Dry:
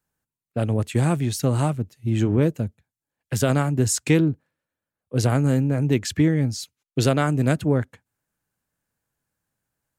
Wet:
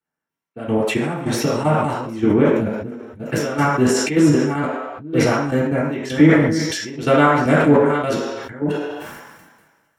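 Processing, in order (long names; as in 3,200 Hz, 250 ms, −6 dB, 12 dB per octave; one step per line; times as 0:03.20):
delay that plays each chunk backwards 583 ms, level −9 dB
low-shelf EQ 65 Hz −7 dB
in parallel at −3 dB: downward compressor, threshold −26 dBFS, peak gain reduction 12.5 dB
on the sum: gate pattern "...xx..x.x" 155 BPM −12 dB
convolution reverb RT60 0.60 s, pre-delay 3 ms, DRR −7 dB
level that may fall only so fast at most 38 dB per second
level −6.5 dB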